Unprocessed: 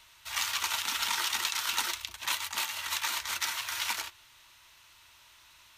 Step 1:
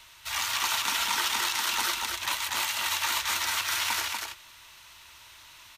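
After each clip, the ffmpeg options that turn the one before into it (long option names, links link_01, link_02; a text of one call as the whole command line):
ffmpeg -i in.wav -filter_complex "[0:a]acrossover=split=1100[link_01][link_02];[link_02]alimiter=level_in=0.5dB:limit=-24dB:level=0:latency=1:release=50,volume=-0.5dB[link_03];[link_01][link_03]amix=inputs=2:normalize=0,aecho=1:1:241:0.631,volume=5.5dB" out.wav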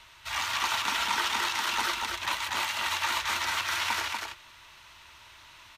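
ffmpeg -i in.wav -af "lowpass=frequency=2800:poles=1,acontrast=58,volume=-4dB" out.wav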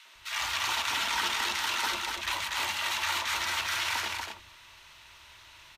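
ffmpeg -i in.wav -filter_complex "[0:a]acrossover=split=230|1100[link_01][link_02][link_03];[link_02]adelay=50[link_04];[link_01]adelay=150[link_05];[link_05][link_04][link_03]amix=inputs=3:normalize=0" out.wav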